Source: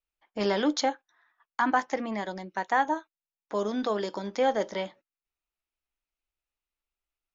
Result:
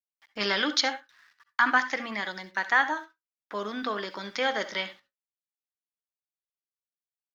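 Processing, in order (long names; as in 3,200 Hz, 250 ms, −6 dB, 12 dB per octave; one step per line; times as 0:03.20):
0:02.98–0:04.19: high-shelf EQ 3,700 Hz −11.5 dB
bit reduction 11 bits
flat-topped bell 2,600 Hz +13.5 dB 2.6 octaves
convolution reverb RT60 0.15 s, pre-delay 57 ms, DRR 12.5 dB
level −5.5 dB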